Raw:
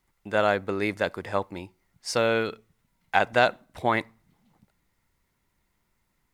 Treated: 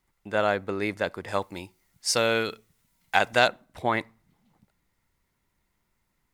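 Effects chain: 1.28–3.48 high shelf 3200 Hz +11 dB; gain -1.5 dB

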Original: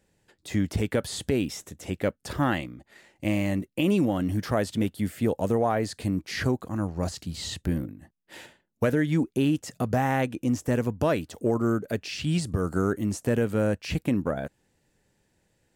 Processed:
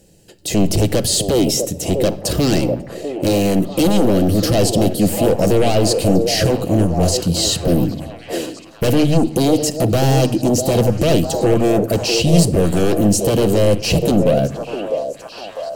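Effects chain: high shelf 8500 Hz +4.5 dB; in parallel at -3 dB: sine folder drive 14 dB, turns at -11 dBFS; on the sum: band shelf 1400 Hz -12 dB; notch 3500 Hz, Q 9; de-hum 75.51 Hz, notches 3; on a send: delay with a stepping band-pass 0.649 s, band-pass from 490 Hz, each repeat 0.7 oct, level -3 dB; on the sum: shoebox room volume 3100 m³, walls furnished, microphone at 0.73 m; gain +1.5 dB

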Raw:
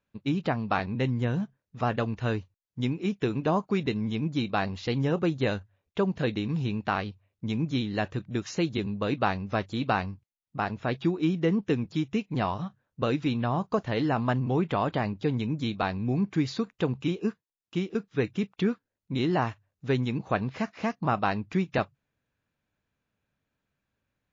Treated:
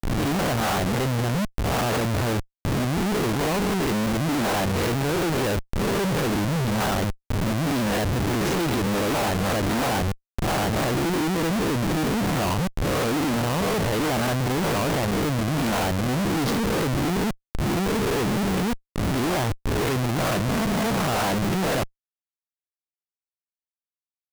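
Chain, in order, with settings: spectral swells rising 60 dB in 0.75 s; 5.41–6.14 low shelf 63 Hz +7.5 dB; Schmitt trigger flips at -34.5 dBFS; gain +4 dB

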